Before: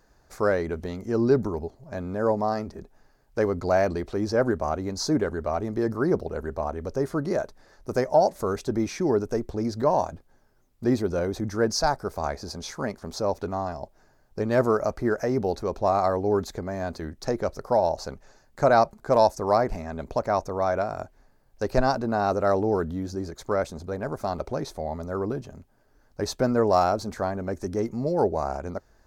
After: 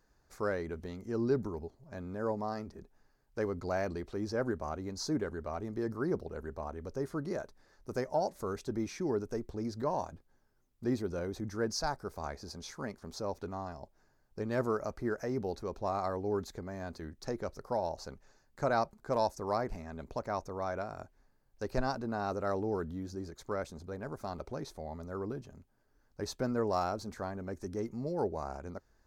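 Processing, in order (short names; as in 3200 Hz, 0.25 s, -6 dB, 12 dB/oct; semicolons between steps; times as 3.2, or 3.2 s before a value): bell 650 Hz -4 dB 0.66 oct; gain -9 dB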